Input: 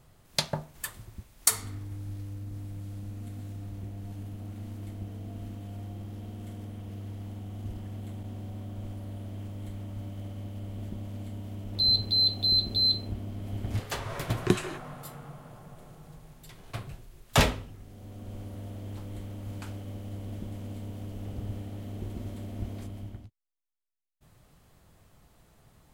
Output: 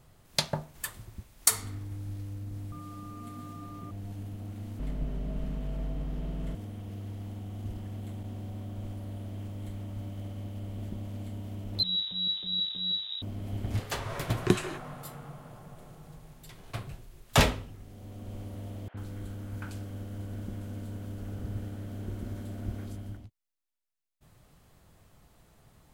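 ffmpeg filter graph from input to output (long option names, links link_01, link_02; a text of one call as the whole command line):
ffmpeg -i in.wav -filter_complex "[0:a]asettb=1/sr,asplit=3[link_01][link_02][link_03];[link_01]atrim=end=2.724[link_04];[link_02]atrim=start=2.72:end=3.91,asetpts=PTS-STARTPTS,afade=type=in:duration=0.004:curve=qsin,afade=type=out:start_time=1.186:duration=0.004:curve=qsin,lowshelf=frequency=120:width_type=q:width=1.5:gain=-7,aecho=1:1:7.2:0.46,atrim=end_sample=52479,aeval=exprs='val(0)+0.00447*sin(2*PI*1200*n/s)':channel_layout=same[link_05];[link_03]atrim=start=3.906[link_06];[link_04][link_05]acrossfade=duration=0.004:curve1=hsin:curve2=qsin[link_07];[link_07][link_06]acrossfade=duration=0.004:curve1=qsin:curve2=hsin,asettb=1/sr,asplit=3[link_08][link_09][link_10];[link_08]atrim=end=4.794[link_11];[link_09]atrim=start=4.79:end=6.55,asetpts=PTS-STARTPTS,afade=type=in:duration=0.004:curve=qsin,afade=type=out:start_time=1.756:duration=0.004:curve=qsin,acontrast=61,highshelf=frequency=4300:gain=-11.5,afreqshift=-52[link_12];[link_10]atrim=start=6.546[link_13];[link_11][link_12]acrossfade=duration=0.004:curve1=hsin:curve2=qsin[link_14];[link_14][link_13]acrossfade=duration=0.004:curve1=qsin:curve2=hsin,asettb=1/sr,asplit=3[link_15][link_16][link_17];[link_15]atrim=end=11.834[link_18];[link_16]atrim=start=11.83:end=13.22,asetpts=PTS-STARTPTS,afade=type=in:duration=0.004:curve=qsin,afade=type=out:start_time=1.386:duration=0.004:curve=qsin,aeval=exprs='max(val(0),0)':channel_layout=same,lowpass=frequency=3300:width_type=q:width=0.5098,lowpass=frequency=3300:width_type=q:width=0.6013,lowpass=frequency=3300:width_type=q:width=0.9,lowpass=frequency=3300:width_type=q:width=2.563,afreqshift=-3900[link_19];[link_17]atrim=start=13.216[link_20];[link_18][link_19]acrossfade=duration=0.004:curve1=hsin:curve2=qsin[link_21];[link_21][link_20]acrossfade=duration=0.004:curve1=qsin:curve2=hsin,asettb=1/sr,asplit=3[link_22][link_23][link_24];[link_22]atrim=end=18.884[link_25];[link_23]atrim=start=18.88:end=23.17,asetpts=PTS-STARTPTS,afade=type=in:duration=0.004:curve=qsin,afade=type=out:start_time=4.286:duration=0.004:curve=qsin,equalizer=frequency=1500:width_type=o:width=0.3:gain=8.5,acrossover=split=690|2800[link_26][link_27][link_28];[link_26]adelay=60[link_29];[link_28]adelay=90[link_30];[link_29][link_27][link_30]amix=inputs=3:normalize=0,atrim=end_sample=189189[link_31];[link_24]atrim=start=23.166[link_32];[link_25][link_31]acrossfade=duration=0.004:curve1=hsin:curve2=qsin[link_33];[link_33][link_32]acrossfade=duration=0.004:curve1=qsin:curve2=hsin" out.wav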